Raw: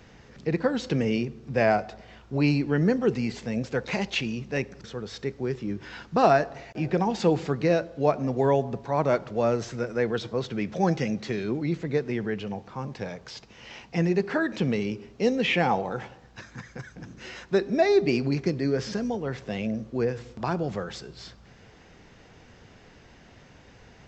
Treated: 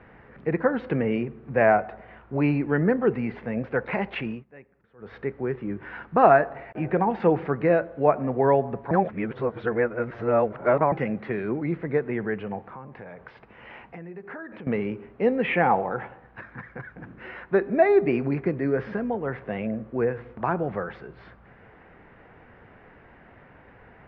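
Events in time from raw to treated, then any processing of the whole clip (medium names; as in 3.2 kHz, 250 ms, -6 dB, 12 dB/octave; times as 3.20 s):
4.31–5.11 s: dip -21 dB, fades 0.13 s
8.91–10.92 s: reverse
12.73–14.67 s: compression 5:1, threshold -39 dBFS
whole clip: low-pass 2 kHz 24 dB/octave; bass shelf 410 Hz -7.5 dB; trim +5.5 dB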